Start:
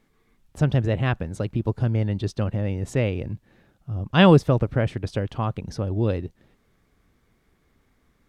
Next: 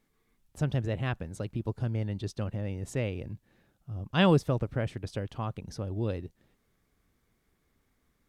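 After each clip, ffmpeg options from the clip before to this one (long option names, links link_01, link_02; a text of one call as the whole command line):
ffmpeg -i in.wav -af "highshelf=frequency=6000:gain=8,volume=-8.5dB" out.wav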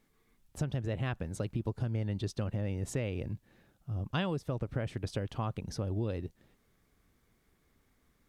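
ffmpeg -i in.wav -af "acompressor=threshold=-31dB:ratio=12,volume=2dB" out.wav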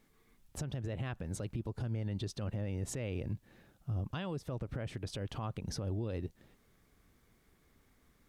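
ffmpeg -i in.wav -af "alimiter=level_in=8dB:limit=-24dB:level=0:latency=1:release=109,volume=-8dB,volume=2.5dB" out.wav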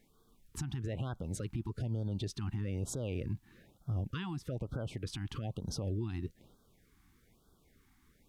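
ffmpeg -i in.wav -af "afftfilt=real='re*(1-between(b*sr/1024,490*pow(2300/490,0.5+0.5*sin(2*PI*1.1*pts/sr))/1.41,490*pow(2300/490,0.5+0.5*sin(2*PI*1.1*pts/sr))*1.41))':imag='im*(1-between(b*sr/1024,490*pow(2300/490,0.5+0.5*sin(2*PI*1.1*pts/sr))/1.41,490*pow(2300/490,0.5+0.5*sin(2*PI*1.1*pts/sr))*1.41))':win_size=1024:overlap=0.75,volume=1dB" out.wav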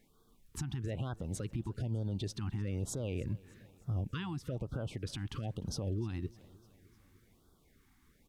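ffmpeg -i in.wav -af "aecho=1:1:302|604|906|1208:0.0708|0.0425|0.0255|0.0153" out.wav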